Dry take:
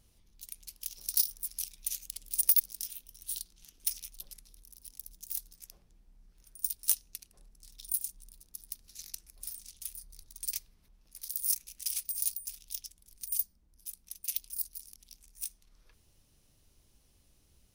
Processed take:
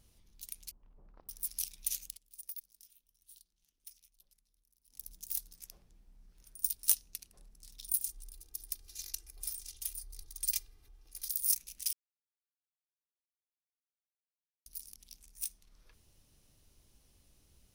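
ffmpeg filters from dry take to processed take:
-filter_complex "[0:a]asettb=1/sr,asplit=3[s0][s1][s2];[s0]atrim=end=0.714[s3];[s1]atrim=start=0.71:end=1.29,asetpts=PTS-STARTPTS,afade=t=in:d=0.004:c=qsin,afade=t=out:st=0.576:d=0.004:c=qsin,lowpass=f=1100:w=0.5412,lowpass=f=1100:w=1.3066[s4];[s2]atrim=start=1.286[s5];[s3][s4]acrossfade=d=0.004:c1=hsin:c2=qsin[s6];[s6][s5]acrossfade=d=0.004:c1=qsin:c2=hsin,asettb=1/sr,asplit=3[s7][s8][s9];[s7]atrim=end=8.064[s10];[s8]atrim=start=8.06:end=11.35,asetpts=PTS-STARTPTS,afade=t=in:d=0.004:c=qsin,afade=t=out:st=3.286:d=0.004:c=qsin,aecho=1:1:2.5:0.82,atrim=end_sample=145089[s11];[s9]atrim=start=11.346[s12];[s10][s11]acrossfade=d=0.004:c1=hsin:c2=qsin[s13];[s13][s12]acrossfade=d=0.004:c1=qsin:c2=hsin,asplit=5[s14][s15][s16][s17][s18];[s14]atrim=end=2.19,asetpts=PTS-STARTPTS,afade=t=out:st=1.98:d=0.21:c=qsin:silence=0.0944061[s19];[s15]atrim=start=2.19:end=4.88,asetpts=PTS-STARTPTS,volume=0.0944[s20];[s16]atrim=start=4.88:end=11.93,asetpts=PTS-STARTPTS,afade=t=in:d=0.21:c=qsin:silence=0.0944061,afade=t=out:st=7.046:d=0.004:c=hsin[s21];[s17]atrim=start=11.93:end=14.66,asetpts=PTS-STARTPTS,volume=0[s22];[s18]atrim=start=14.66,asetpts=PTS-STARTPTS,afade=t=in:d=0.004:c=hsin[s23];[s19][s20][s21][s22][s23]concat=n=5:v=0:a=1"

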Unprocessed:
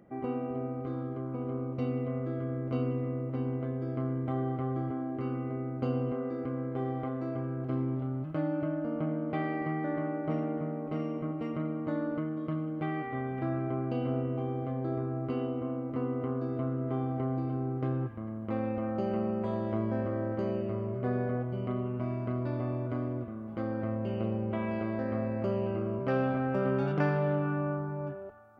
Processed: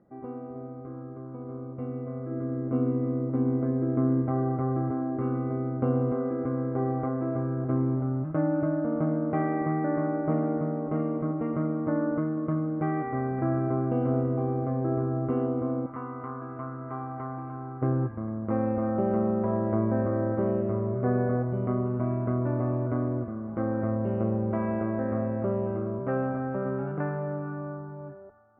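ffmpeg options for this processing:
-filter_complex "[0:a]asettb=1/sr,asplit=3[s0][s1][s2];[s0]atrim=end=2.314[s3];[s1]atrim=start=2.31:end=4.22,asetpts=PTS-STARTPTS,afade=t=in:d=0.004:c=qsin,afade=t=out:st=1.906:d=0.004:c=qsin,equalizer=f=280:w=1.5:g=6.5[s4];[s2]atrim=start=4.216[s5];[s3][s4]acrossfade=d=0.004:c1=hsin:c2=qsin[s6];[s6][s5]acrossfade=d=0.004:c1=qsin:c2=hsin,asettb=1/sr,asplit=3[s7][s8][s9];[s7]atrim=end=15.864[s10];[s8]atrim=start=15.86:end=17.82,asetpts=PTS-STARTPTS,afade=t=in:d=0.004:c=qsin,afade=t=out:st=1.956:d=0.004:c=qsin,lowshelf=f=720:t=q:w=1.5:g=-10.5[s11];[s9]atrim=start=17.816[s12];[s10][s11]acrossfade=d=0.004:c1=hsin:c2=qsin[s13];[s13][s12]acrossfade=d=0.004:c1=qsin:c2=hsin,lowpass=f=1700:w=0.5412,lowpass=f=1700:w=1.3066,dynaudnorm=f=290:g=21:m=3.16,volume=0.596"

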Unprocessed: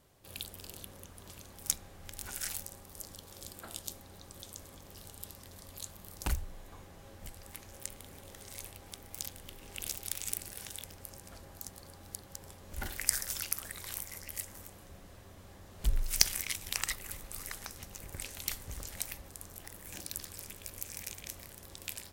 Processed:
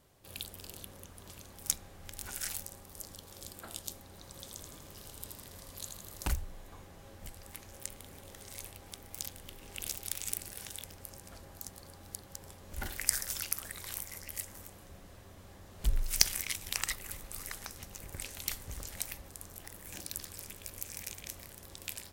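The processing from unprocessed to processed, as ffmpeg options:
-filter_complex "[0:a]asettb=1/sr,asplit=3[s0][s1][s2];[s0]atrim=end=4.094[s3];[s1]atrim=start=4.09:end=6.33,asetpts=PTS-STARTPTS,afade=t=in:d=0.004:c=qsin,afade=t=out:st=2.236:d=0.004:c=qsin,aecho=1:1:81|162|243|324|405|486|567|648:0.562|0.321|0.183|0.104|0.0594|0.0338|0.0193|0.011,atrim=end_sample=98784[s4];[s2]atrim=start=6.326[s5];[s3][s4]acrossfade=d=0.004:c1=hsin:c2=qsin[s6];[s6][s5]acrossfade=d=0.004:c1=qsin:c2=hsin"

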